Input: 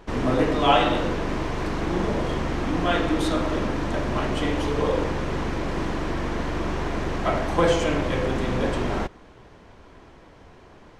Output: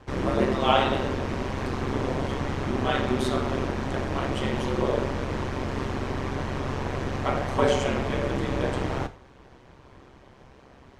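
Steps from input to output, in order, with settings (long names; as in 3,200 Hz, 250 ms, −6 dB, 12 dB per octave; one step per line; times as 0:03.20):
ring modulation 66 Hz
reverb whose tail is shaped and stops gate 140 ms falling, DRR 10.5 dB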